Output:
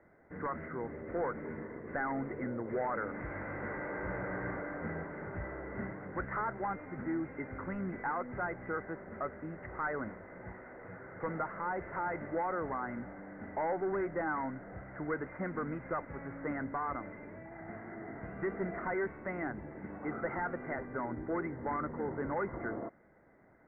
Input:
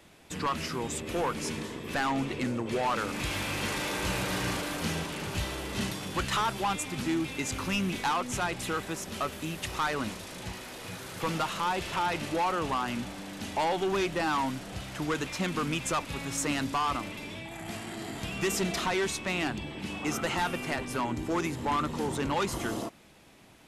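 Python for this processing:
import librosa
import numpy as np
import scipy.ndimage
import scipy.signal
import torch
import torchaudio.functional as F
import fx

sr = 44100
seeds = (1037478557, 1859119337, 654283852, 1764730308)

y = scipy.signal.sosfilt(scipy.signal.cheby1(6, 6, 2100.0, 'lowpass', fs=sr, output='sos'), x)
y = F.gain(torch.from_numpy(y), -2.5).numpy()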